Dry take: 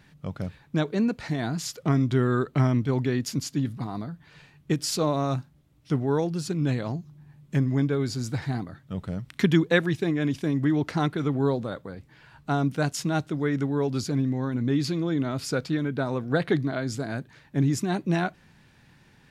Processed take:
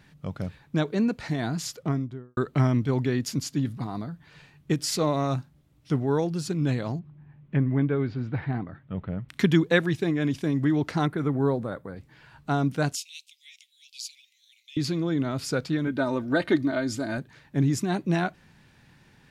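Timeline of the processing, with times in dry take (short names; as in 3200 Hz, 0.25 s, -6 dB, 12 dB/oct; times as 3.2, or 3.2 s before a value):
1.61–2.37 studio fade out
4.87–5.28 bell 2000 Hz +9 dB 0.23 oct
6.99–9.29 LPF 2800 Hz 24 dB/oct
11.05–11.96 band shelf 4300 Hz -8.5 dB
12.95–14.77 steep high-pass 2400 Hz 72 dB/oct
15.87–17.18 comb 3.3 ms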